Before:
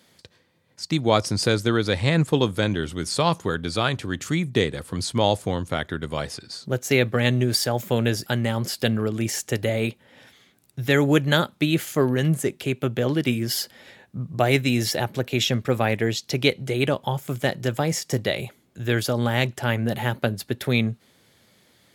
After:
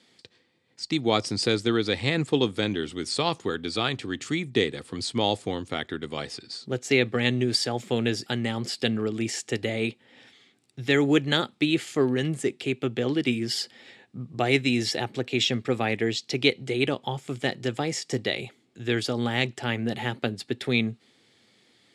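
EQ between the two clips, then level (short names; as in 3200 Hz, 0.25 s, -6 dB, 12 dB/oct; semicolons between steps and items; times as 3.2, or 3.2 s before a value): speaker cabinet 160–8100 Hz, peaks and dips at 170 Hz -8 dB, 590 Hz -9 dB, 1000 Hz -7 dB, 1500 Hz -6 dB, 6300 Hz -6 dB; 0.0 dB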